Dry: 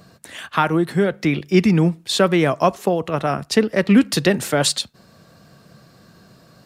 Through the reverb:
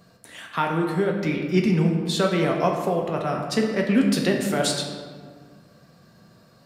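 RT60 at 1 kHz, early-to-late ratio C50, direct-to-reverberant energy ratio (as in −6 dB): 1.6 s, 4.0 dB, 1.0 dB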